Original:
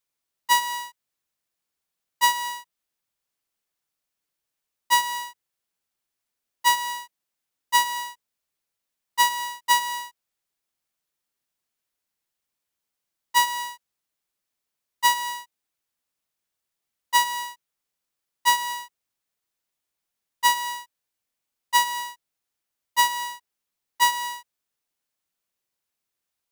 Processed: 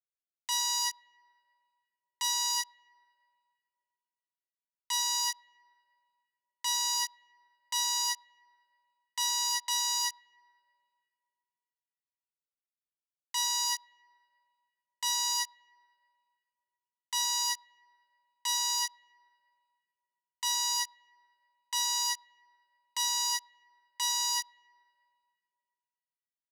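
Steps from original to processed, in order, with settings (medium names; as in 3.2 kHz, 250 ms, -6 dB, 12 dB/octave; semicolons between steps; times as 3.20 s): comb 5 ms, depth 71%; fuzz box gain 37 dB, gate -46 dBFS; reverse; upward compressor, threshold -37 dBFS; reverse; band-pass filter 6 kHz, Q 1; peak limiter -19 dBFS, peak gain reduction 7 dB; on a send: distance through air 340 m + reverberation RT60 3.0 s, pre-delay 71 ms, DRR 22.5 dB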